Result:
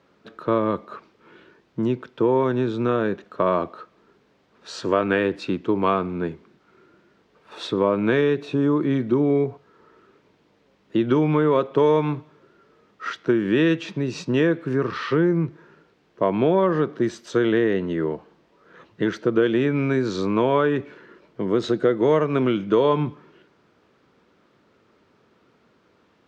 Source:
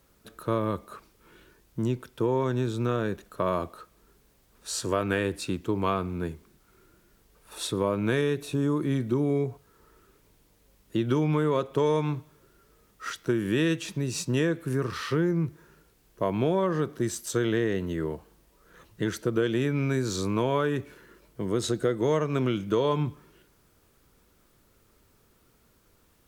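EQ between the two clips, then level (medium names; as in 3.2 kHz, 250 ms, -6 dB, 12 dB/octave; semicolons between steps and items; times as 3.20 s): high-pass 180 Hz 12 dB/octave; distance through air 200 m; treble shelf 8.2 kHz -4 dB; +7.5 dB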